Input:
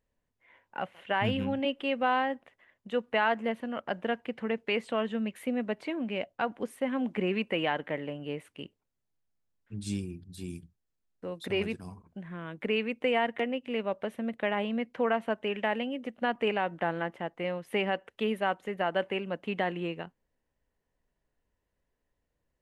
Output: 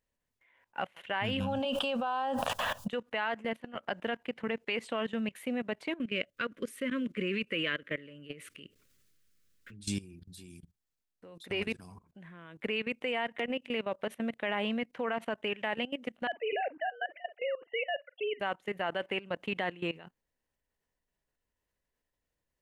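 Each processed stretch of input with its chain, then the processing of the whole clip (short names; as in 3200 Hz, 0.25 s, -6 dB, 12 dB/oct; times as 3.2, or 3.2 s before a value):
1.4–2.88 fixed phaser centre 850 Hz, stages 4 + fast leveller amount 100%
5.99–9.81 upward compressor, threshold -37 dBFS + Butterworth band-stop 810 Hz, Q 1.2
16.27–18.4 sine-wave speech + doubler 46 ms -13.5 dB
whole clip: tilt shelf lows -3.5 dB, about 1200 Hz; level quantiser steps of 18 dB; gain +4 dB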